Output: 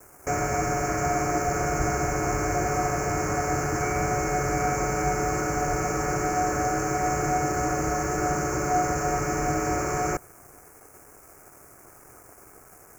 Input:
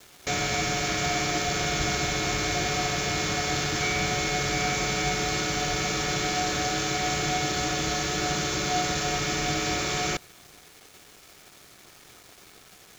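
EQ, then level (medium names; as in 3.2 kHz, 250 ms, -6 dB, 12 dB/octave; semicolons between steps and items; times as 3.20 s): Butterworth band-stop 3.6 kHz, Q 0.58; peaking EQ 190 Hz -7 dB 0.62 oct; band-stop 1.8 kHz, Q 18; +4.5 dB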